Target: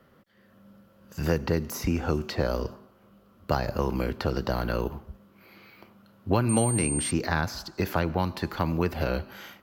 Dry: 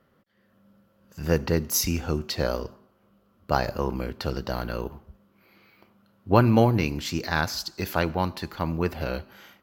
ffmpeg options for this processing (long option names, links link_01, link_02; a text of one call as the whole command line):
ffmpeg -i in.wav -filter_complex "[0:a]acrossover=split=230|2000[link_01][link_02][link_03];[link_01]acompressor=threshold=-33dB:ratio=4[link_04];[link_02]acompressor=threshold=-31dB:ratio=4[link_05];[link_03]acompressor=threshold=-46dB:ratio=4[link_06];[link_04][link_05][link_06]amix=inputs=3:normalize=0,asettb=1/sr,asplit=3[link_07][link_08][link_09];[link_07]atrim=end=6.494[link_10];[link_08]atrim=start=6.49:end=7.11,asetpts=PTS-STARTPTS,afade=type=in:duration=0.004:curve=qsin,afade=type=out:start_time=0.616:duration=0.004:curve=qsin,aeval=exprs='val(0)+0.02*sin(2*PI*8700*n/s)':channel_layout=same[link_11];[link_09]atrim=start=7.106[link_12];[link_10][link_11]acrossfade=duration=0.004:curve1=hsin:curve2=qsin[link_13];[link_13][link_12]acrossfade=duration=0.004:curve1=qsin:curve2=hsin,volume=5.5dB" out.wav